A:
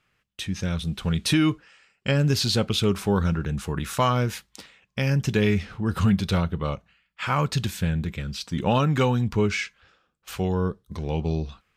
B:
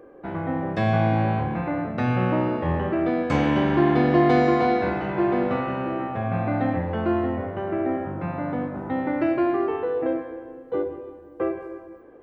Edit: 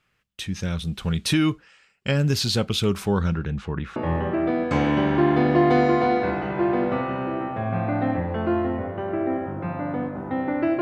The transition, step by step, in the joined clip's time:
A
3.05–3.96 s: low-pass 9.1 kHz -> 1.8 kHz
3.96 s: go over to B from 2.55 s

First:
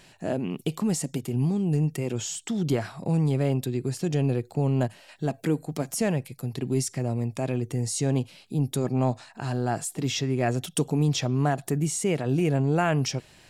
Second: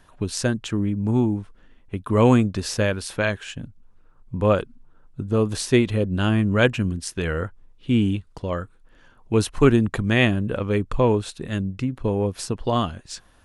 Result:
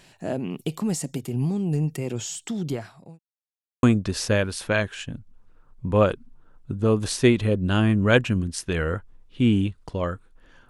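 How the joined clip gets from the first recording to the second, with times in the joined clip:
first
2.47–3.19 s: fade out linear
3.19–3.83 s: mute
3.83 s: go over to second from 2.32 s

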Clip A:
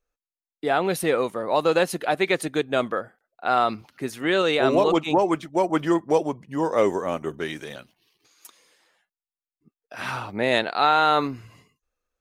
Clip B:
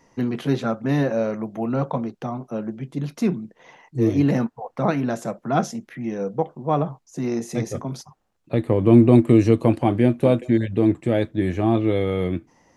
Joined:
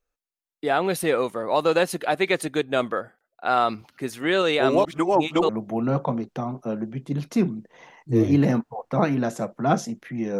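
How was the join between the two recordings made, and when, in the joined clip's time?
clip A
4.85–5.49 s: reverse
5.49 s: go over to clip B from 1.35 s

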